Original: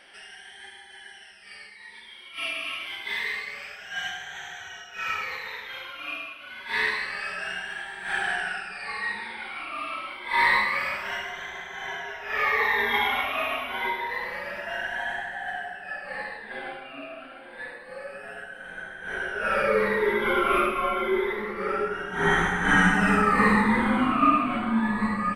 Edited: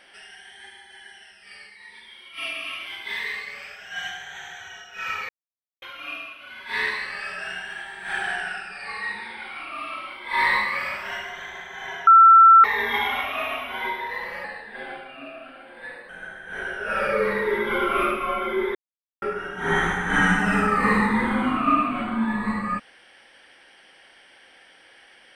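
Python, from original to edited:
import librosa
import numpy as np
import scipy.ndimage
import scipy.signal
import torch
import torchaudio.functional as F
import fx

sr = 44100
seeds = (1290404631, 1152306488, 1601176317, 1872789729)

y = fx.edit(x, sr, fx.silence(start_s=5.29, length_s=0.53),
    fx.bleep(start_s=12.07, length_s=0.57, hz=1340.0, db=-7.5),
    fx.cut(start_s=14.44, length_s=1.76),
    fx.cut(start_s=17.85, length_s=0.79),
    fx.silence(start_s=21.3, length_s=0.47), tone=tone)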